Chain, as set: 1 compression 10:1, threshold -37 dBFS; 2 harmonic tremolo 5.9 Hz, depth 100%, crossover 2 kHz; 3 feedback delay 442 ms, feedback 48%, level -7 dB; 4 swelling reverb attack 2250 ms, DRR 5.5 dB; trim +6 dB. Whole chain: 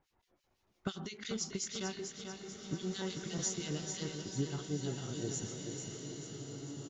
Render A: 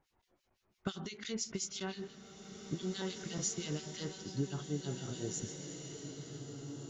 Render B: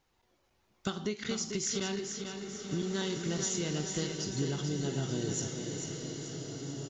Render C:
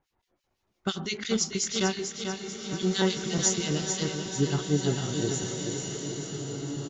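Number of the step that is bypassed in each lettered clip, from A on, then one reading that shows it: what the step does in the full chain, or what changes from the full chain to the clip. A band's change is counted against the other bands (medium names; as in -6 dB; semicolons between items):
3, echo-to-direct -2.0 dB to -5.5 dB; 2, crest factor change -3.0 dB; 1, mean gain reduction 9.0 dB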